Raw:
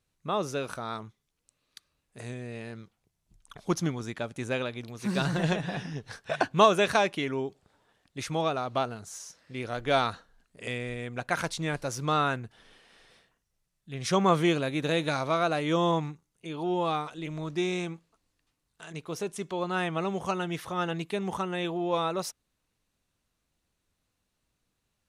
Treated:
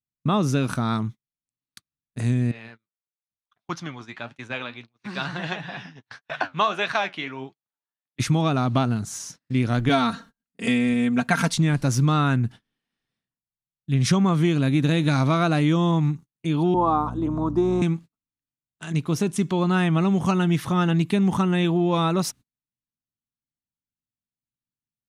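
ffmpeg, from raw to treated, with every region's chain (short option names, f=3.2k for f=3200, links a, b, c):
-filter_complex "[0:a]asettb=1/sr,asplit=3[a][b][c];[a]atrim=end=2.514[d];[b]atrim=start=2.51:end=8.2,asetpts=PTS-STARTPTS,afade=t=in:d=0.004:c=qsin,afade=t=out:st=5.686:d=0.004:c=qsin,acrossover=split=540 4900:gain=0.112 1 0.1[e][f][g];[e][f][g]amix=inputs=3:normalize=0,flanger=delay=5.6:depth=7.1:regen=64:speed=1.6:shape=triangular[h];[c]atrim=start=8.196[i];[d][h]acrossfade=d=0.004:c1=hsin:c2=qsin[j];[j][i]acrossfade=d=0.004:c1=qsin:c2=hsin,asettb=1/sr,asplit=3[k][l][m];[k]atrim=end=9.894[n];[l]atrim=start=9.89:end=11.55,asetpts=PTS-STARTPTS,afade=t=in:d=0.004:c=qsin,afade=t=out:st=1.656:d=0.004:c=qsin,highpass=f=140:p=1,aecho=1:1:4.4:0.75,atrim=end_sample=73206[o];[m]atrim=start=11.546[p];[n][o]acrossfade=d=0.004:c1=hsin:c2=qsin[q];[q][p]acrossfade=d=0.004:c1=qsin:c2=hsin,asettb=1/sr,asplit=3[r][s][t];[r]atrim=end=16.744[u];[s]atrim=start=16.74:end=17.82,asetpts=PTS-STARTPTS,afade=t=in:d=0.004:c=qsin,afade=t=out:st=1.076:d=0.004:c=qsin,highpass=f=230:w=0.5412,highpass=f=230:w=1.3066,aeval=exprs='val(0)+0.00501*(sin(2*PI*60*n/s)+sin(2*PI*2*60*n/s)/2+sin(2*PI*3*60*n/s)/3+sin(2*PI*4*60*n/s)/4+sin(2*PI*5*60*n/s)/5)':c=same,highshelf=f=1.5k:t=q:w=3:g=-13[v];[t]atrim=start=17.816[w];[u][v]acrossfade=d=0.004:c1=hsin:c2=qsin[x];[x][w]acrossfade=d=0.004:c1=qsin:c2=hsin,agate=range=-34dB:threshold=-50dB:ratio=16:detection=peak,equalizer=f=125:t=o:w=1:g=10,equalizer=f=250:t=o:w=1:g=10,equalizer=f=500:t=o:w=1:g=-7,acompressor=threshold=-24dB:ratio=10,volume=8dB"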